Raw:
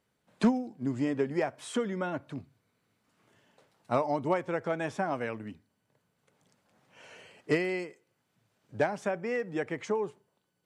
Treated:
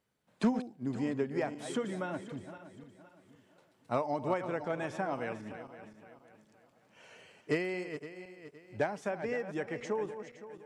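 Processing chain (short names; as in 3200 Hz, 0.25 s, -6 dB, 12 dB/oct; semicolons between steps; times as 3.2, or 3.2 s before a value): regenerating reverse delay 0.258 s, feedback 58%, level -10.5 dB; gain -4 dB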